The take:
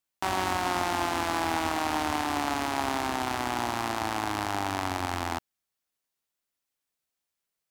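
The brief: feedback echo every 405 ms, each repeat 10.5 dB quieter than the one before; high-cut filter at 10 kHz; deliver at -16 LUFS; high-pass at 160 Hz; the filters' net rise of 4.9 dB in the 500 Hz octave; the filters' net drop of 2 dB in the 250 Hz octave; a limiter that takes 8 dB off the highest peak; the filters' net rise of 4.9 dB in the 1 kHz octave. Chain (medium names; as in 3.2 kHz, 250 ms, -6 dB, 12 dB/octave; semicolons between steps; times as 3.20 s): high-pass 160 Hz; low-pass 10 kHz; peaking EQ 250 Hz -5.5 dB; peaking EQ 500 Hz +7 dB; peaking EQ 1 kHz +4 dB; peak limiter -18 dBFS; feedback delay 405 ms, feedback 30%, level -10.5 dB; trim +14 dB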